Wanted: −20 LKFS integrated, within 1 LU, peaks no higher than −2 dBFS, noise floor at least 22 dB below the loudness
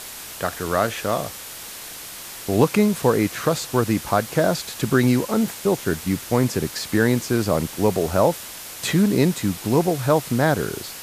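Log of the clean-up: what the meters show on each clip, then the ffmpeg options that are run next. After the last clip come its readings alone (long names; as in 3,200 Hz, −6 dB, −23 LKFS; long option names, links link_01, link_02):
background noise floor −37 dBFS; target noise floor −44 dBFS; integrated loudness −21.5 LKFS; sample peak −3.5 dBFS; target loudness −20.0 LKFS
→ -af "afftdn=noise_reduction=7:noise_floor=-37"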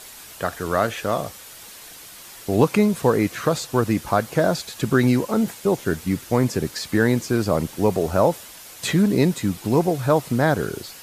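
background noise floor −42 dBFS; target noise floor −44 dBFS
→ -af "afftdn=noise_reduction=6:noise_floor=-42"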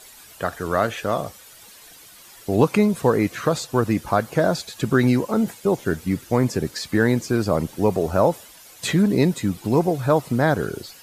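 background noise floor −46 dBFS; integrated loudness −21.5 LKFS; sample peak −4.0 dBFS; target loudness −20.0 LKFS
→ -af "volume=1.5dB"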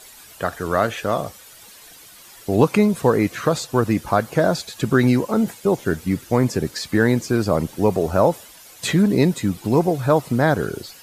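integrated loudness −20.0 LKFS; sample peak −2.5 dBFS; background noise floor −45 dBFS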